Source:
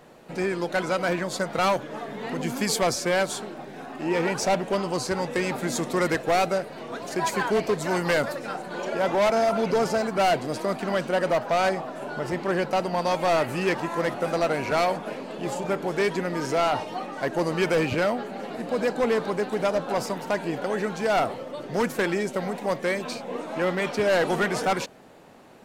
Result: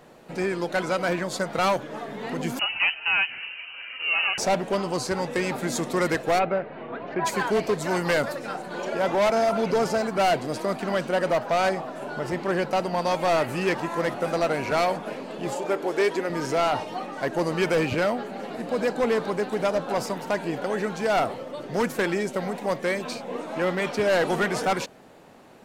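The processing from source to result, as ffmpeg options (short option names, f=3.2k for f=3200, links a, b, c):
-filter_complex "[0:a]asettb=1/sr,asplit=3[a][b][c];[a]atrim=end=2.594[d];[b]atrim=start=2.59:end=4.38,asetpts=PTS-STARTPTS,afade=t=in:d=0.004:c=qsin,afade=t=out:st=1.786:d=0.004:c=qsin,lowpass=f=2.6k:t=q:w=0.5098,lowpass=f=2.6k:t=q:w=0.6013,lowpass=f=2.6k:t=q:w=0.9,lowpass=f=2.6k:t=q:w=2.563,afreqshift=-3100[e];[c]atrim=start=4.376[f];[d][e]acrossfade=d=0.004:c1=hsin:c2=qsin[g];[g][f]acrossfade=d=0.004:c1=qsin:c2=hsin,asplit=3[h][i][j];[h]afade=t=out:st=6.38:d=0.02[k];[i]lowpass=f=2.7k:w=0.5412,lowpass=f=2.7k:w=1.3066,afade=t=in:st=6.38:d=0.02,afade=t=out:st=7.24:d=0.02[l];[j]afade=t=in:st=7.24:d=0.02[m];[k][l][m]amix=inputs=3:normalize=0,asettb=1/sr,asplit=3[n][o][p];[n]atrim=end=15.544[q];[o]atrim=start=15.54:end=16.3,asetpts=PTS-STARTPTS,afade=t=in:d=0.004:c=qsin,afade=t=out:st=0.756:d=0.004:c=qsin,lowshelf=f=240:t=q:w=1.5:g=-8.5[r];[p]atrim=start=16.296[s];[q][r]acrossfade=d=0.004:c1=hsin:c2=qsin[t];[t][s]acrossfade=d=0.004:c1=qsin:c2=hsin"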